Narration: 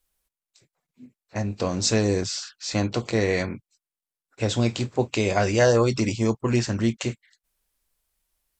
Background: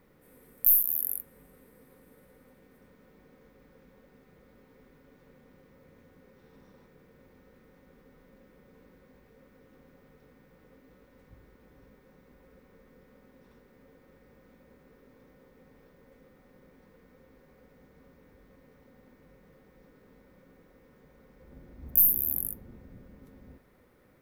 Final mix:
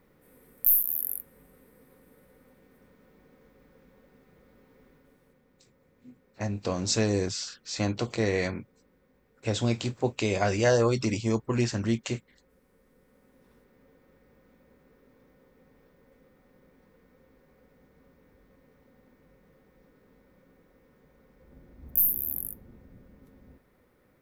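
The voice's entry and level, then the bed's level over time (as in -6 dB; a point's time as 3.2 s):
5.05 s, -4.0 dB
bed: 4.9 s -0.5 dB
5.43 s -7.5 dB
12.68 s -7.5 dB
13.51 s -2.5 dB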